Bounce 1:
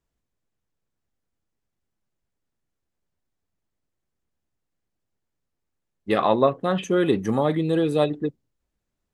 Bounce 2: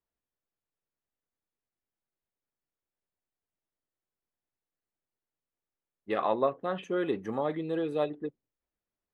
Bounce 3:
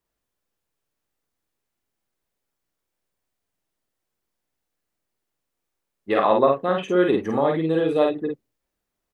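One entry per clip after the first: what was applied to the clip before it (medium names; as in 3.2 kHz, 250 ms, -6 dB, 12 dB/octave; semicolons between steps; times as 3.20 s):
tone controls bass -9 dB, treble -13 dB; trim -7.5 dB
doubling 50 ms -3 dB; trim +8.5 dB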